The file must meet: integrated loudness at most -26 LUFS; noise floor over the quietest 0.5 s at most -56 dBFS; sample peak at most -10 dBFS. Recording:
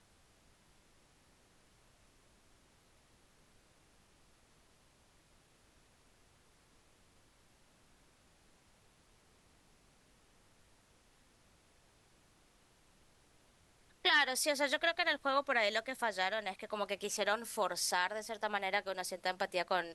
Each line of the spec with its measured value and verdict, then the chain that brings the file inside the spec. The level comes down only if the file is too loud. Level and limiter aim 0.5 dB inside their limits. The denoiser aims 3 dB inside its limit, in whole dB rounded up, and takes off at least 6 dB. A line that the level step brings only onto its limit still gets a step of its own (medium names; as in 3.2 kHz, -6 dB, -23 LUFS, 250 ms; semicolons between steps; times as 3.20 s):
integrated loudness -34.0 LUFS: pass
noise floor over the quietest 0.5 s -68 dBFS: pass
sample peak -17.5 dBFS: pass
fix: none needed